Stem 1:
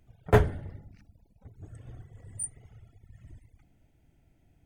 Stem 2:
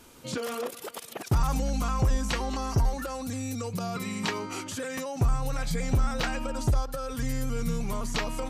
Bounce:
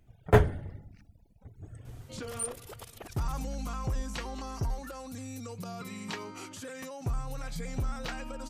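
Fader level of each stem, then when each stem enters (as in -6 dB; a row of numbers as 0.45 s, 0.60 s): 0.0 dB, -8.0 dB; 0.00 s, 1.85 s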